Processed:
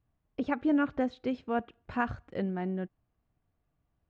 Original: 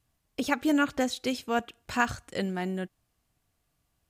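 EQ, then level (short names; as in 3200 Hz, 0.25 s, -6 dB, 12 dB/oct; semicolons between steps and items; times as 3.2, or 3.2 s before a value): tape spacing loss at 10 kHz 44 dB; 0.0 dB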